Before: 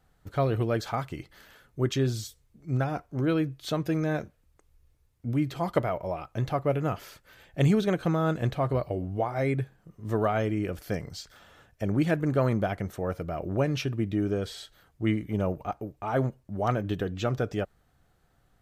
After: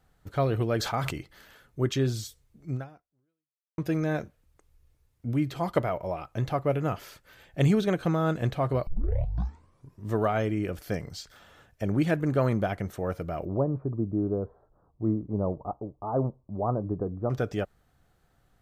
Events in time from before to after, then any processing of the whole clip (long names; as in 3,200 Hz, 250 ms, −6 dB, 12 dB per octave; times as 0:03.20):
0:00.77–0:01.18: level that may fall only so fast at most 37 dB per second
0:02.70–0:03.78: fade out exponential
0:08.87: tape start 1.22 s
0:13.45–0:17.30: elliptic low-pass filter 1,100 Hz, stop band 60 dB